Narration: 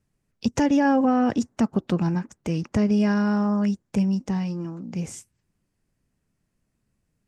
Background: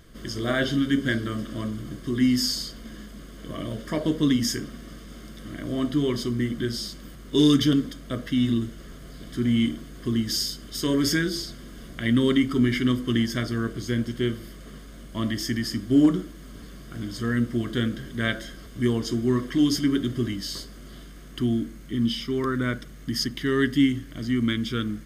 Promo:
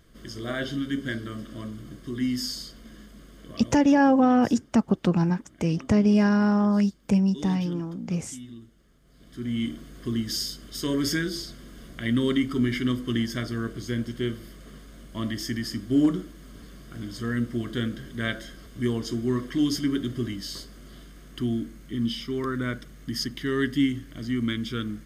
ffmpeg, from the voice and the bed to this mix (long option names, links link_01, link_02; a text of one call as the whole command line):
ffmpeg -i stem1.wav -i stem2.wav -filter_complex "[0:a]adelay=3150,volume=1dB[link_01];[1:a]volume=10.5dB,afade=type=out:start_time=3.38:duration=0.66:silence=0.211349,afade=type=in:start_time=9.04:duration=0.84:silence=0.149624[link_02];[link_01][link_02]amix=inputs=2:normalize=0" out.wav